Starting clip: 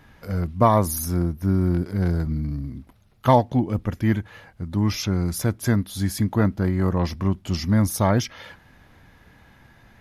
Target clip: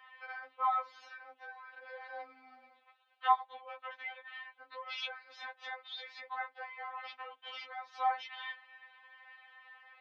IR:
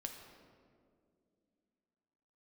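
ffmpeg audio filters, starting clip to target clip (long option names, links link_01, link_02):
-af "acompressor=threshold=-23dB:ratio=12,highpass=frequency=570:width_type=q:width=0.5412,highpass=frequency=570:width_type=q:width=1.307,lowpass=frequency=3500:width_type=q:width=0.5176,lowpass=frequency=3500:width_type=q:width=0.7071,lowpass=frequency=3500:width_type=q:width=1.932,afreqshift=110,afftfilt=real='re*3.46*eq(mod(b,12),0)':imag='im*3.46*eq(mod(b,12),0)':win_size=2048:overlap=0.75,volume=1dB"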